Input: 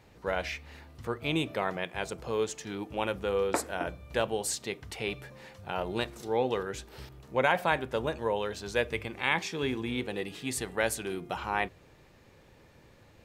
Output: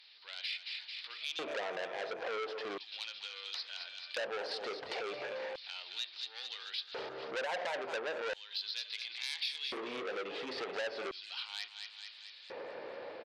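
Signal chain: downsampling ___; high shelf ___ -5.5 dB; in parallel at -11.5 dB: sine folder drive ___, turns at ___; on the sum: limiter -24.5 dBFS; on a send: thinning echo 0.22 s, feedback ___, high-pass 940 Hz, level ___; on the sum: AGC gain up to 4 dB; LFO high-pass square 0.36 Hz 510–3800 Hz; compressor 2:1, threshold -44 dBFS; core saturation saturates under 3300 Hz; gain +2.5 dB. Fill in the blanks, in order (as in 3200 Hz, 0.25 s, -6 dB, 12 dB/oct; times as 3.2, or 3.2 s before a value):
11025 Hz, 2200 Hz, 12 dB, -12 dBFS, 58%, -8.5 dB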